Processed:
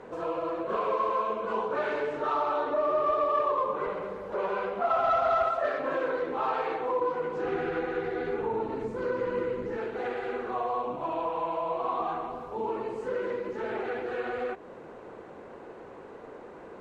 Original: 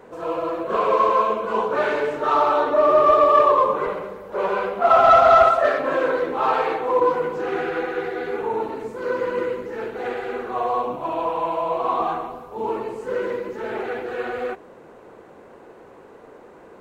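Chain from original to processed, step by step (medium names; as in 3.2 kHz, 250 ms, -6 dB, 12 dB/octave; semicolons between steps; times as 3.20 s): 7.43–9.77 s: bass shelf 220 Hz +10.5 dB; compression 2:1, threshold -33 dBFS, peak gain reduction 13 dB; distance through air 56 m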